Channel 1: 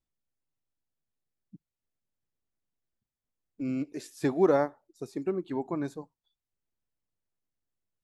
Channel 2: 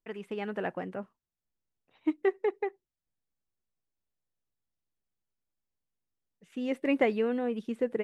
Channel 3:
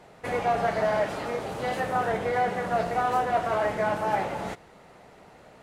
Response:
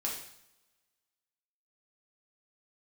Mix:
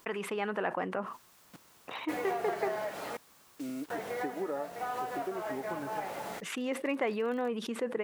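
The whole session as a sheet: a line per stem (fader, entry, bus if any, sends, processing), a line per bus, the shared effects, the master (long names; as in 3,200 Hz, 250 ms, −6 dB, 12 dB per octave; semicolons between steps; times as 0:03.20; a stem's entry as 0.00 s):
+0.5 dB, 0.00 s, bus A, no send, rippled gain that drifts along the octave scale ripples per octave 1.9, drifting −0.29 Hz, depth 13 dB; Bessel low-pass filter 1,900 Hz
−6.5 dB, 0.00 s, no bus, no send, parametric band 1,100 Hz +7.5 dB 0.7 octaves; envelope flattener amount 70%
−5.0 dB, 1.85 s, muted 0:03.17–0:03.90, bus A, no send, no processing
bus A: 0.0 dB, bit reduction 8 bits; downward compressor 6 to 1, threshold −31 dBFS, peak gain reduction 13.5 dB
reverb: not used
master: high-pass filter 340 Hz 6 dB per octave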